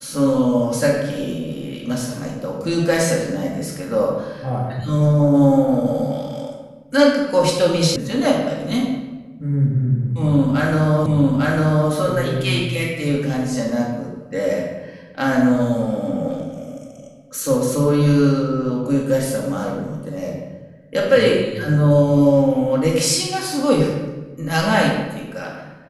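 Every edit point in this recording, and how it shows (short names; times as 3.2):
7.96 sound cut off
11.06 repeat of the last 0.85 s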